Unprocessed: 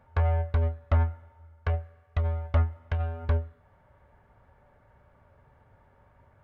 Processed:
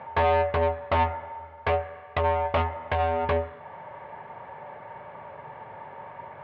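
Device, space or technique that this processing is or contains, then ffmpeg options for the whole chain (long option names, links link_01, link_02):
overdrive pedal into a guitar cabinet: -filter_complex "[0:a]asplit=2[link_01][link_02];[link_02]highpass=frequency=720:poles=1,volume=30dB,asoftclip=type=tanh:threshold=-13.5dB[link_03];[link_01][link_03]amix=inputs=2:normalize=0,lowpass=frequency=2700:poles=1,volume=-6dB,highpass=110,equalizer=frequency=150:width_type=q:width=4:gain=5,equalizer=frequency=260:width_type=q:width=4:gain=-5,equalizer=frequency=920:width_type=q:width=4:gain=4,equalizer=frequency=1400:width_type=q:width=4:gain=-9,lowpass=frequency=3400:width=0.5412,lowpass=frequency=3400:width=1.3066"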